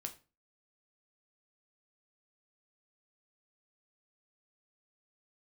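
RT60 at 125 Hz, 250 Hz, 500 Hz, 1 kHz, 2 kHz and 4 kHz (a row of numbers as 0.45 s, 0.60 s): 0.45 s, 0.40 s, 0.35 s, 0.30 s, 0.30 s, 0.25 s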